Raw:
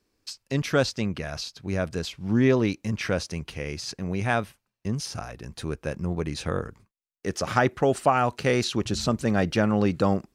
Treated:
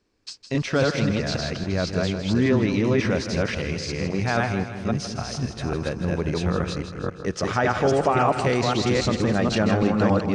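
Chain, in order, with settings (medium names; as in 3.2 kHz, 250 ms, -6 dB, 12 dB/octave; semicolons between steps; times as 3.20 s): chunks repeated in reverse 273 ms, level -0.5 dB; low-pass 8 kHz 24 dB/octave; treble shelf 5.1 kHz -5 dB; in parallel at +3 dB: peak limiter -18 dBFS, peak gain reduction 12 dB; on the sum: two-band feedback delay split 500 Hz, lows 212 ms, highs 160 ms, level -9.5 dB; trim -5 dB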